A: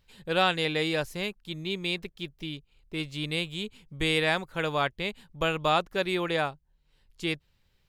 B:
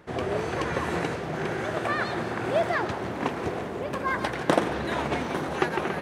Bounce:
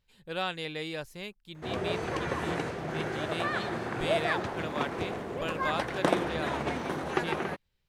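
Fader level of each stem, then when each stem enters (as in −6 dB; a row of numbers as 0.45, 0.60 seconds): −8.5, −4.0 decibels; 0.00, 1.55 seconds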